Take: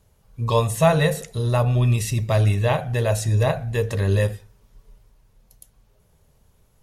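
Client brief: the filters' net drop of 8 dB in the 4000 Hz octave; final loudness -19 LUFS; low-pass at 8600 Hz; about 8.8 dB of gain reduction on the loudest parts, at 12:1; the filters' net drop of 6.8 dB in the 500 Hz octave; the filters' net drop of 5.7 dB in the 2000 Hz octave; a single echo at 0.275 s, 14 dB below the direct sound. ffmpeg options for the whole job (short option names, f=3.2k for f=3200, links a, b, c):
-af "lowpass=8.6k,equalizer=f=500:t=o:g=-8.5,equalizer=f=2k:t=o:g=-4.5,equalizer=f=4k:t=o:g=-8,acompressor=threshold=-24dB:ratio=12,aecho=1:1:275:0.2,volume=10dB"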